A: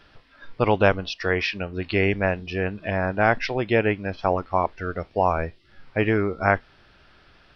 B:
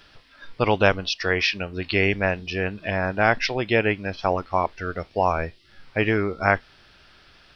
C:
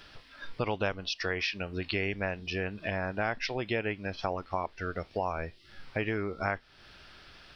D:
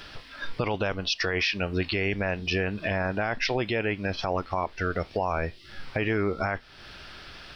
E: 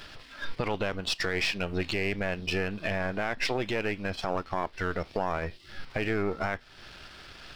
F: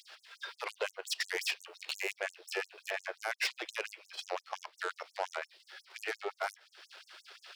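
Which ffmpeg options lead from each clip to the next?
-af "highshelf=f=3k:g=11,volume=-1dB"
-af "acompressor=threshold=-33dB:ratio=2.5"
-af "alimiter=level_in=1dB:limit=-24dB:level=0:latency=1:release=16,volume=-1dB,volume=8.5dB"
-af "aeval=exprs='if(lt(val(0),0),0.447*val(0),val(0))':c=same"
-af "aeval=exprs='0.158*(cos(1*acos(clip(val(0)/0.158,-1,1)))-cos(1*PI/2))+0.0251*(cos(6*acos(clip(val(0)/0.158,-1,1)))-cos(6*PI/2))+0.0141*(cos(8*acos(clip(val(0)/0.158,-1,1)))-cos(8*PI/2))':c=same,afftfilt=real='re*gte(b*sr/1024,330*pow(6400/330,0.5+0.5*sin(2*PI*5.7*pts/sr)))':imag='im*gte(b*sr/1024,330*pow(6400/330,0.5+0.5*sin(2*PI*5.7*pts/sr)))':win_size=1024:overlap=0.75,volume=-3.5dB"

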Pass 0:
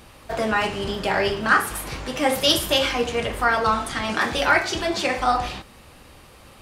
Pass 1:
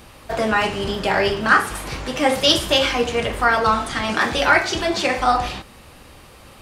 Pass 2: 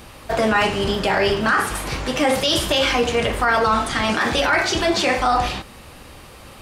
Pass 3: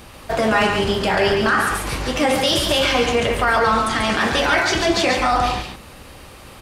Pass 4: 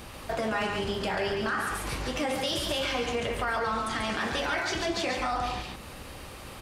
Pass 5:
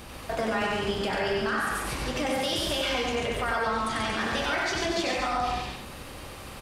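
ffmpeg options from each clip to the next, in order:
-filter_complex "[0:a]acrossover=split=9100[a][b];[b]acompressor=threshold=-48dB:ratio=4:attack=1:release=60[c];[a][c]amix=inputs=2:normalize=0,volume=3dB"
-af "alimiter=limit=-12dB:level=0:latency=1:release=23,volume=3dB"
-af "aecho=1:1:139:0.531"
-af "acompressor=threshold=-32dB:ratio=2,volume=-2.5dB"
-af "aecho=1:1:94:0.708"

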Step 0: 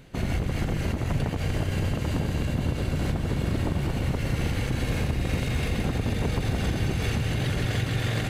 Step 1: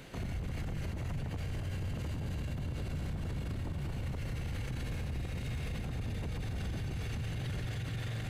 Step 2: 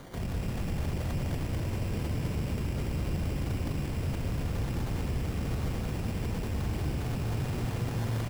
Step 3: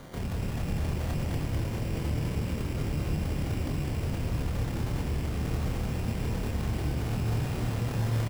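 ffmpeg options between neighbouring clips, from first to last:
-filter_complex "[0:a]acrossover=split=160[a][b];[b]acompressor=threshold=-47dB:ratio=2.5[c];[a][c]amix=inputs=2:normalize=0,lowshelf=f=280:g=-7,alimiter=level_in=10.5dB:limit=-24dB:level=0:latency=1:release=24,volume=-10.5dB,volume=4dB"
-filter_complex "[0:a]asplit=2[a][b];[b]asplit=7[c][d][e][f][g][h][i];[c]adelay=83,afreqshift=120,volume=-12.5dB[j];[d]adelay=166,afreqshift=240,volume=-16.8dB[k];[e]adelay=249,afreqshift=360,volume=-21.1dB[l];[f]adelay=332,afreqshift=480,volume=-25.4dB[m];[g]adelay=415,afreqshift=600,volume=-29.7dB[n];[h]adelay=498,afreqshift=720,volume=-34dB[o];[i]adelay=581,afreqshift=840,volume=-38.3dB[p];[j][k][l][m][n][o][p]amix=inputs=7:normalize=0[q];[a][q]amix=inputs=2:normalize=0,acrusher=samples=17:mix=1:aa=0.000001,asplit=2[r][s];[s]aecho=0:1:204.1|277:0.562|0.316[t];[r][t]amix=inputs=2:normalize=0,volume=3.5dB"
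-filter_complex "[0:a]asplit=2[a][b];[b]adelay=27,volume=-4dB[c];[a][c]amix=inputs=2:normalize=0"

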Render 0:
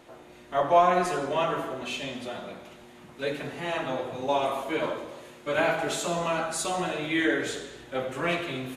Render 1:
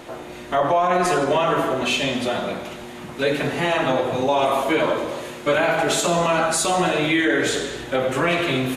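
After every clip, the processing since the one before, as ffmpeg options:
-filter_complex "[0:a]asplit=2[a][b];[b]acompressor=threshold=-34dB:ratio=6,volume=-0.5dB[c];[a][c]amix=inputs=2:normalize=0,alimiter=limit=-18.5dB:level=0:latency=1:release=53,volume=8dB"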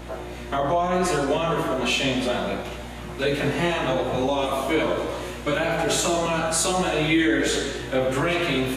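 -filter_complex "[0:a]acrossover=split=390|3000[a][b][c];[b]acompressor=threshold=-23dB:ratio=6[d];[a][d][c]amix=inputs=3:normalize=0,flanger=delay=18:depth=5.2:speed=0.69,aeval=exprs='val(0)+0.00891*(sin(2*PI*60*n/s)+sin(2*PI*2*60*n/s)/2+sin(2*PI*3*60*n/s)/3+sin(2*PI*4*60*n/s)/4+sin(2*PI*5*60*n/s)/5)':c=same,volume=2.5dB"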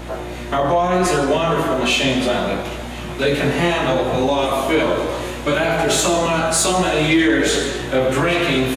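-filter_complex "[0:a]asplit=2[a][b];[b]aeval=exprs='0.335*sin(PI/2*1.41*val(0)/0.335)':c=same,volume=-3dB[c];[a][c]amix=inputs=2:normalize=0,aecho=1:1:1047:0.0841,volume=-2dB"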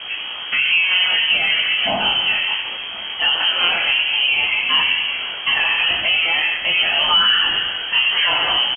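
-af "acrusher=bits=6:dc=4:mix=0:aa=0.000001,lowpass=f=2.8k:t=q:w=0.5098,lowpass=f=2.8k:t=q:w=0.6013,lowpass=f=2.8k:t=q:w=0.9,lowpass=f=2.8k:t=q:w=2.563,afreqshift=-3300"

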